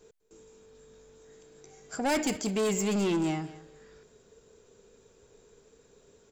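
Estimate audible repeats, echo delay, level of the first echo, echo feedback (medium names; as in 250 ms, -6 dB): 2, 201 ms, -17.0 dB, 17%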